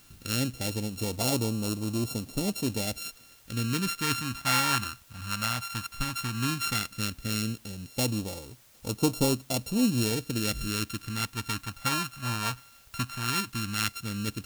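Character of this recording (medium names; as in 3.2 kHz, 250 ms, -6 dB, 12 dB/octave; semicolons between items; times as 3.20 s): a buzz of ramps at a fixed pitch in blocks of 32 samples; phasing stages 2, 0.14 Hz, lowest notch 400–1600 Hz; a quantiser's noise floor 10-bit, dither triangular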